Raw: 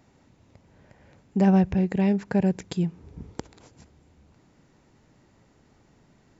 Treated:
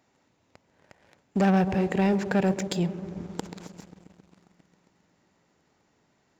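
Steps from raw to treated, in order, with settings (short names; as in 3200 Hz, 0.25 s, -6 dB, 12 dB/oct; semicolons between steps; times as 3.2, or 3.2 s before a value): low shelf 300 Hz -10 dB; on a send: darkening echo 0.134 s, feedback 84%, low-pass 860 Hz, level -13 dB; on the sum: sample leveller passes 2; low shelf 64 Hz -9 dB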